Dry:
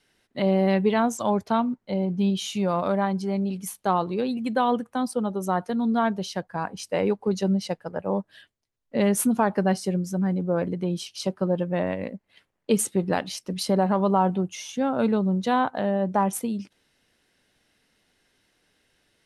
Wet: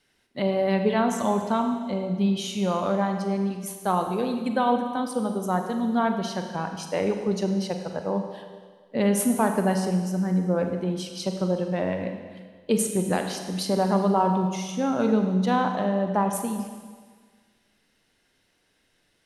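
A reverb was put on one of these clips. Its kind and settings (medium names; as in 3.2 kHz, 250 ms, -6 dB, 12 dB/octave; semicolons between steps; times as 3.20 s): Schroeder reverb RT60 1.6 s, combs from 33 ms, DRR 5 dB; trim -1.5 dB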